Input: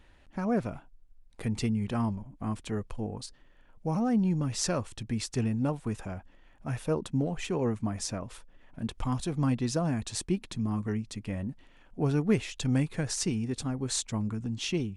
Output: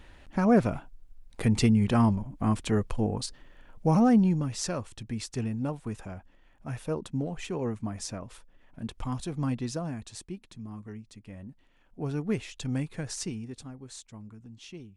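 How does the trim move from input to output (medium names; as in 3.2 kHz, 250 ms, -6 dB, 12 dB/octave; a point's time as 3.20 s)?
4.06 s +7 dB
4.57 s -2.5 dB
9.60 s -2.5 dB
10.34 s -10.5 dB
11.25 s -10.5 dB
12.26 s -4 dB
13.21 s -4 dB
13.94 s -14 dB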